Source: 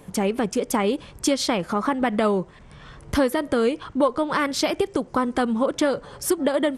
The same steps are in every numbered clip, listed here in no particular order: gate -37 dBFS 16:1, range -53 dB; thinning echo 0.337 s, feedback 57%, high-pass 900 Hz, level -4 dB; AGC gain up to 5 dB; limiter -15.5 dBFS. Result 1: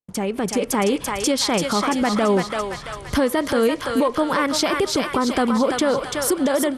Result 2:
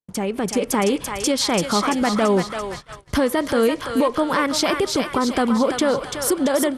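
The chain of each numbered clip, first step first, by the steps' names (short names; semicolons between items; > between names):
thinning echo > limiter > AGC > gate; limiter > thinning echo > gate > AGC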